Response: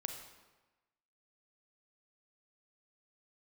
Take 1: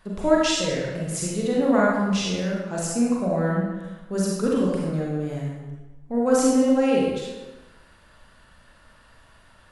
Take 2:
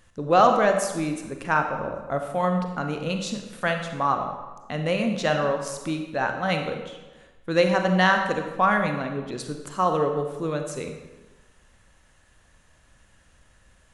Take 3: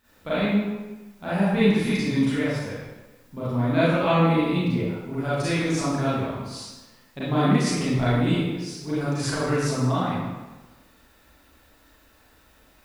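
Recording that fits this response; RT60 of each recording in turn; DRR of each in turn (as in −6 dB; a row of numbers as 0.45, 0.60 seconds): 2; 1.2, 1.2, 1.2 seconds; −4.5, 4.5, −12.0 decibels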